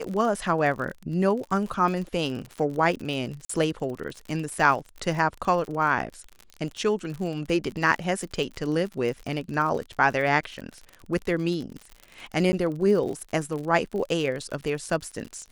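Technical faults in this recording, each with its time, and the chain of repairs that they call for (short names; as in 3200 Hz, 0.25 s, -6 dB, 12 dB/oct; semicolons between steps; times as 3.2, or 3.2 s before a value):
crackle 47/s -32 dBFS
3.45–3.49 gap 44 ms
12.52–12.53 gap 10 ms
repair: de-click; interpolate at 3.45, 44 ms; interpolate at 12.52, 10 ms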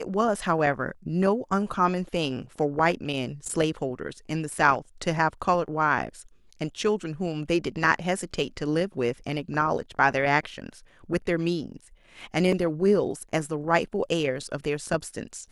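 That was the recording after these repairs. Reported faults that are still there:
none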